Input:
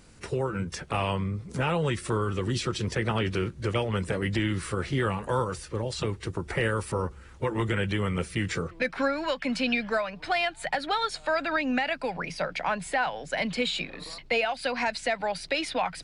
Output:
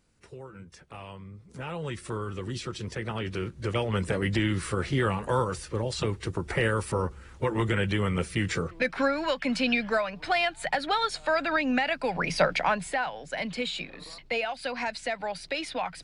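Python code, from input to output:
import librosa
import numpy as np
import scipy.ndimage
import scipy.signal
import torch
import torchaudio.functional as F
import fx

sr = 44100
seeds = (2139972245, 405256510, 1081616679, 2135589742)

y = fx.gain(x, sr, db=fx.line((1.21, -15.0), (1.98, -6.0), (3.14, -6.0), (4.0, 1.0), (12.01, 1.0), (12.4, 8.0), (13.06, -3.5)))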